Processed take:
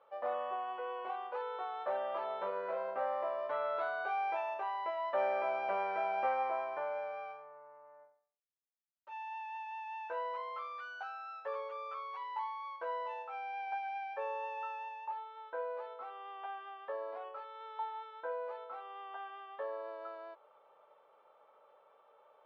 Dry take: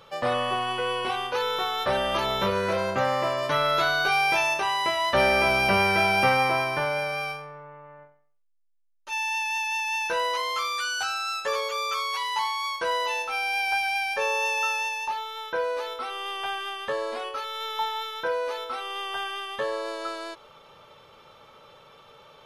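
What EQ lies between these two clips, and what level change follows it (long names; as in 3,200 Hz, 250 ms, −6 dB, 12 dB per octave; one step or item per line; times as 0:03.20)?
four-pole ladder band-pass 790 Hz, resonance 30%
high-frequency loss of the air 79 metres
0.0 dB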